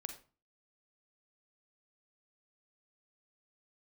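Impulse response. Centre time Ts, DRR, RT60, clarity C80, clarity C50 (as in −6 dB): 12 ms, 6.5 dB, 0.35 s, 14.0 dB, 9.0 dB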